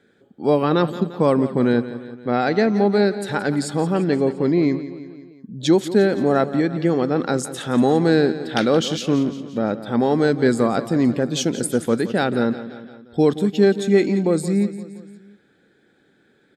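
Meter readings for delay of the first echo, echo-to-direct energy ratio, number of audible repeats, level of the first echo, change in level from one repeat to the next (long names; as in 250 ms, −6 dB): 173 ms, −12.5 dB, 4, −14.0 dB, −5.0 dB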